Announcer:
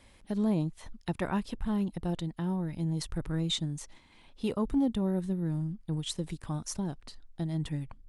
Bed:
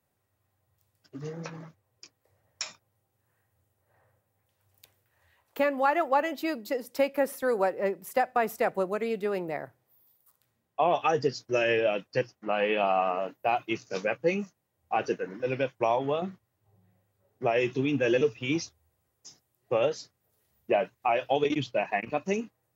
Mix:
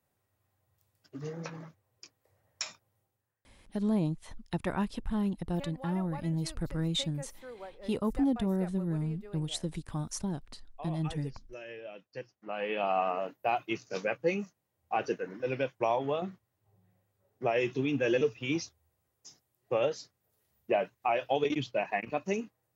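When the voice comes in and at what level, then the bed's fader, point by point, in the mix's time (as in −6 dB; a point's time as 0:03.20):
3.45 s, −0.5 dB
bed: 0:03.03 −1.5 dB
0:03.46 −19.5 dB
0:11.81 −19.5 dB
0:12.97 −3 dB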